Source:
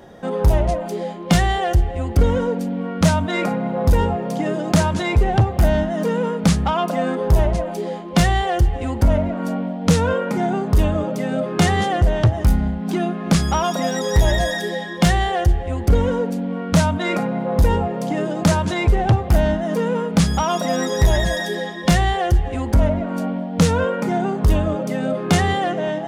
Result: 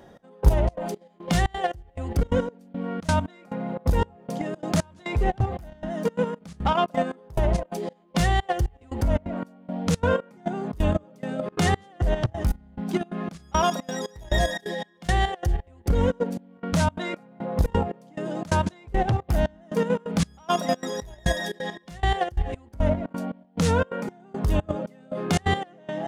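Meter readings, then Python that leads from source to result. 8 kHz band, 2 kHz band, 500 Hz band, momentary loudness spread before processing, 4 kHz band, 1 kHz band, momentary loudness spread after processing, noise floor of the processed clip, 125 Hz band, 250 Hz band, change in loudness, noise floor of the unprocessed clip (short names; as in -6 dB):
-8.0 dB, -6.5 dB, -6.5 dB, 6 LU, -7.0 dB, -5.5 dB, 10 LU, -53 dBFS, -8.0 dB, -8.5 dB, -7.5 dB, -28 dBFS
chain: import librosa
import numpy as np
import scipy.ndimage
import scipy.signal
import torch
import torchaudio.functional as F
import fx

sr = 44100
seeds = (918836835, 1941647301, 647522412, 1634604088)

y = fx.step_gate(x, sr, bpm=175, pattern='xx...xxx.', floor_db=-24.0, edge_ms=4.5)
y = fx.level_steps(y, sr, step_db=10)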